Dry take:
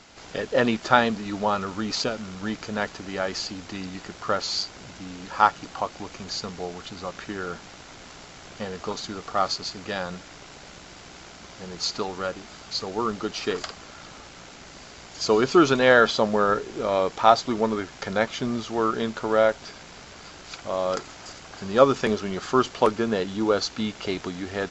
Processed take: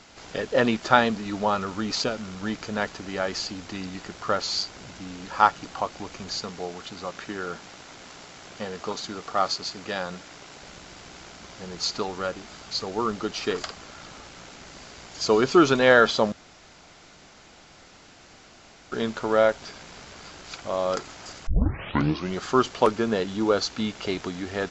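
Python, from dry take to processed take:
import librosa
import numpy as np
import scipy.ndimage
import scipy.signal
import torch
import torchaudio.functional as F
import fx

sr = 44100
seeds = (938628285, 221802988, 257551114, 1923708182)

y = fx.low_shelf(x, sr, hz=90.0, db=-10.0, at=(6.42, 10.62))
y = fx.edit(y, sr, fx.room_tone_fill(start_s=16.32, length_s=2.6),
    fx.tape_start(start_s=21.47, length_s=0.86), tone=tone)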